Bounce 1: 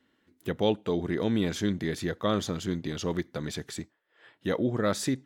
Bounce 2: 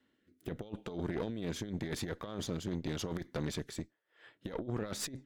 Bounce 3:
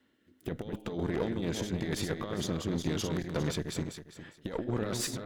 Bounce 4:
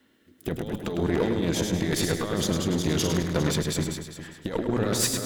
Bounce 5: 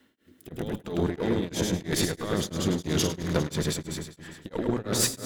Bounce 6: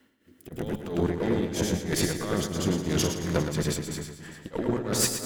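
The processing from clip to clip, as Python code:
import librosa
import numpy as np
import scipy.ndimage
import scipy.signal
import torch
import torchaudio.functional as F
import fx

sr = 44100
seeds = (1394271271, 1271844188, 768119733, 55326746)

y1 = fx.rotary_switch(x, sr, hz=0.85, then_hz=7.0, switch_at_s=3.99)
y1 = fx.over_compress(y1, sr, threshold_db=-32.0, ratio=-0.5)
y1 = fx.tube_stage(y1, sr, drive_db=28.0, bias=0.7)
y1 = y1 * librosa.db_to_amplitude(-1.0)
y2 = fx.reverse_delay_fb(y1, sr, ms=202, feedback_pct=41, wet_db=-5.5)
y2 = y2 * librosa.db_to_amplitude(4.0)
y3 = fx.high_shelf(y2, sr, hz=6700.0, db=6.0)
y3 = fx.hum_notches(y3, sr, base_hz=60, count=2)
y3 = fx.echo_feedback(y3, sr, ms=104, feedback_pct=38, wet_db=-7)
y3 = y3 * librosa.db_to_amplitude(6.5)
y4 = y3 * np.abs(np.cos(np.pi * 3.0 * np.arange(len(y3)) / sr))
y4 = y4 * librosa.db_to_amplitude(1.0)
y5 = fx.peak_eq(y4, sr, hz=3700.0, db=-5.5, octaves=0.25)
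y5 = fx.echo_feedback(y5, sr, ms=118, feedback_pct=38, wet_db=-9.0)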